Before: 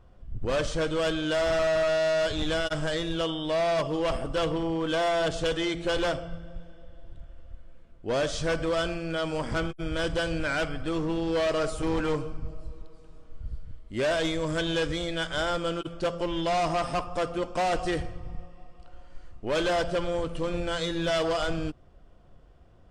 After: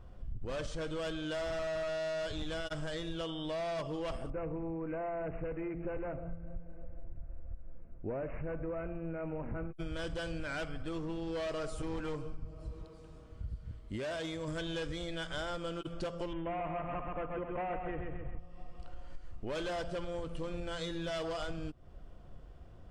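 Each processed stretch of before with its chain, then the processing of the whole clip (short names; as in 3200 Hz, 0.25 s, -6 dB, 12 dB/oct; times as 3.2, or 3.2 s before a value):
4.3–9.76 bell 3000 Hz -14 dB 1.9 oct + notch 1100 Hz, Q 16 + careless resampling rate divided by 8×, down none, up filtered
12.45–14.48 HPF 46 Hz + compressor, threshold -31 dBFS
16.33–18.39 steep low-pass 2600 Hz 48 dB/oct + feedback echo 0.132 s, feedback 43%, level -4.5 dB
whole clip: low shelf 190 Hz +4 dB; compressor, threshold -36 dBFS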